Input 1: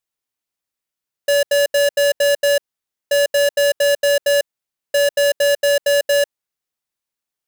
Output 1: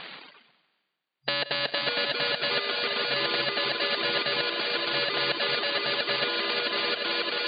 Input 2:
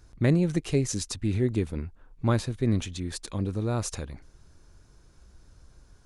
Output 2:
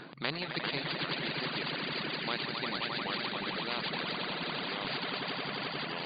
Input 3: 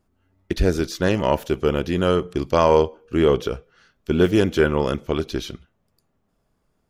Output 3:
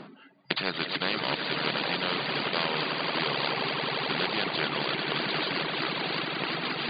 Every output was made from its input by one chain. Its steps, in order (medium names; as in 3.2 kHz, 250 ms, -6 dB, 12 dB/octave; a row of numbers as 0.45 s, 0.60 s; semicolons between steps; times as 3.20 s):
median filter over 9 samples; treble shelf 2.3 kHz +10.5 dB; ever faster or slower copies 348 ms, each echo -3 st, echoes 3, each echo -6 dB; on a send: echo with a slow build-up 88 ms, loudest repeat 5, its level -11.5 dB; on the sum: FFT band-pass 130–4800 Hz; reverse; upward compressor, threshold -25 dBFS; reverse; reverb removal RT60 1.9 s; spectrum-flattening compressor 4:1; peak normalisation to -9 dBFS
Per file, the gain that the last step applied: -6.5 dB, +1.0 dB, -6.5 dB